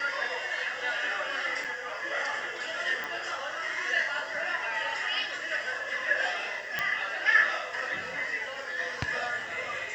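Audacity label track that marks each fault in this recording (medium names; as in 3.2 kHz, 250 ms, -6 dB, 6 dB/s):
1.640000	1.650000	dropout 6.6 ms
3.040000	3.040000	pop
6.790000	6.790000	pop -14 dBFS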